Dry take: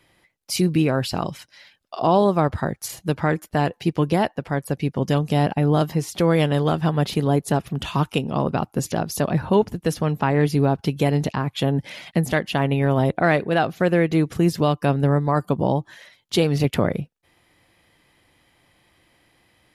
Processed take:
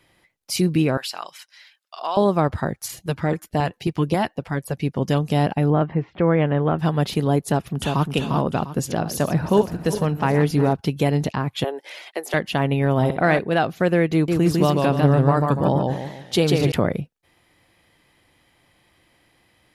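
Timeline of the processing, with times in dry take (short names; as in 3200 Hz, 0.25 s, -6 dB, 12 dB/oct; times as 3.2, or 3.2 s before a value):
0.97–2.17 HPF 1100 Hz
2.79–4.8 LFO notch saw up 3.7 Hz 200–2000 Hz
5.7–6.79 inverse Chebyshev low-pass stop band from 11000 Hz, stop band 80 dB
7.41–8.1 echo throw 0.35 s, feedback 30%, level -4 dB
8.66–10.73 regenerating reverse delay 0.185 s, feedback 69%, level -12 dB
11.64–12.34 Chebyshev high-pass 370 Hz, order 4
12.95–13.39 flutter echo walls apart 10.7 m, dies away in 0.39 s
14.13–16.72 warbling echo 0.147 s, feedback 40%, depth 125 cents, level -3 dB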